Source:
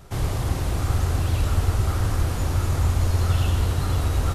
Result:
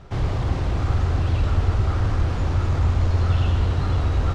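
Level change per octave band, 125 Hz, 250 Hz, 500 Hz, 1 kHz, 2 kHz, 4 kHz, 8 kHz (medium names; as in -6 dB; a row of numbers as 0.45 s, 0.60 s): +1.5 dB, +1.5 dB, +1.0 dB, +1.0 dB, 0.0 dB, -2.5 dB, under -10 dB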